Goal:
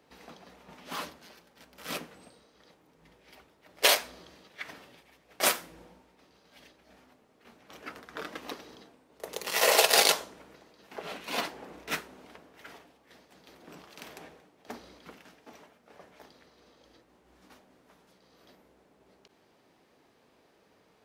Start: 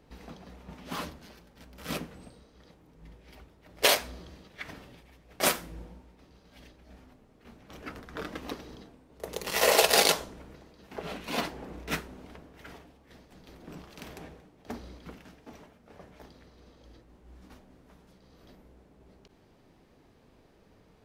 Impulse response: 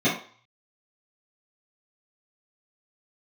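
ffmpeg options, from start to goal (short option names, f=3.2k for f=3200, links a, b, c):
-af "highpass=f=500:p=1,volume=1dB"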